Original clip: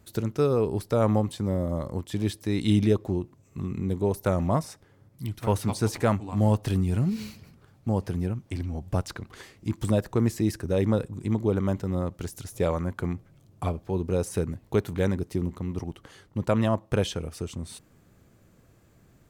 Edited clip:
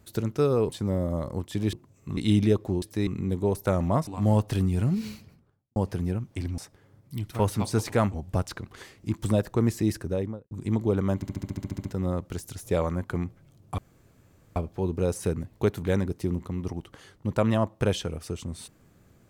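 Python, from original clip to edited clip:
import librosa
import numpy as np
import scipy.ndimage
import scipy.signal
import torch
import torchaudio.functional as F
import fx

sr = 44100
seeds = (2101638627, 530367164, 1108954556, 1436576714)

y = fx.studio_fade_out(x, sr, start_s=7.16, length_s=0.75)
y = fx.studio_fade_out(y, sr, start_s=10.54, length_s=0.56)
y = fx.edit(y, sr, fx.cut(start_s=0.69, length_s=0.59),
    fx.swap(start_s=2.32, length_s=0.25, other_s=3.22, other_length_s=0.44),
    fx.move(start_s=4.66, length_s=1.56, to_s=8.73),
    fx.stutter(start_s=11.74, slice_s=0.07, count=11),
    fx.insert_room_tone(at_s=13.67, length_s=0.78), tone=tone)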